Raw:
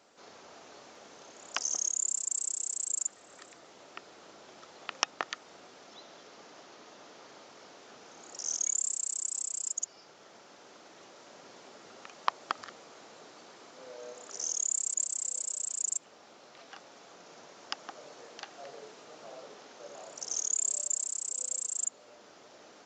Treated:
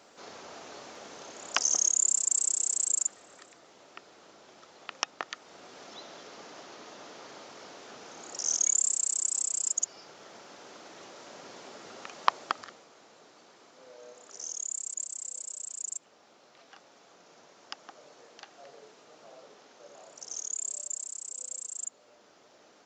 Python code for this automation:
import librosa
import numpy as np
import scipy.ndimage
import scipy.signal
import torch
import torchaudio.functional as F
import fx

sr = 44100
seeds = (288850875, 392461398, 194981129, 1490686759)

y = fx.gain(x, sr, db=fx.line((2.86, 6.0), (3.49, -2.0), (5.28, -2.0), (5.81, 5.0), (12.37, 5.0), (12.89, -4.5)))